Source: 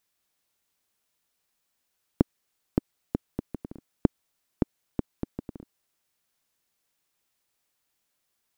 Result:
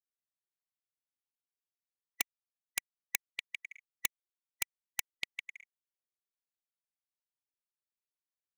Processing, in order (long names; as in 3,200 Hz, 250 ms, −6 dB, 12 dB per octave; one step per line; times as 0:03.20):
neighbouring bands swapped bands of 2,000 Hz
0:02.21–0:03.42: high-shelf EQ 2,200 Hz −3.5 dB
wrap-around overflow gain 14.5 dB
power curve on the samples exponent 1.4
flanger swept by the level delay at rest 10.4 ms, full sweep at −30.5 dBFS
level +1 dB